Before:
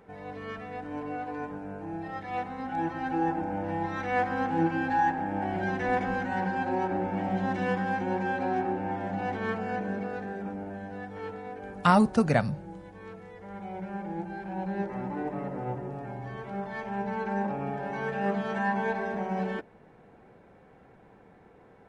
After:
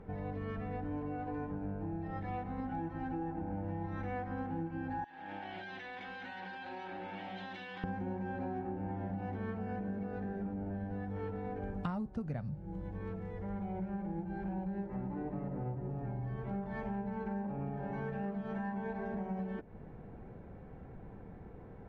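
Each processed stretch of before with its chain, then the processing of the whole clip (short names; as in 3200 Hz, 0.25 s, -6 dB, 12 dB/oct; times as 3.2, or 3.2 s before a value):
5.04–7.84 band-pass 3600 Hz, Q 3 + fast leveller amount 100%
whole clip: RIAA curve playback; compressor 10:1, threshold -34 dBFS; gain -1.5 dB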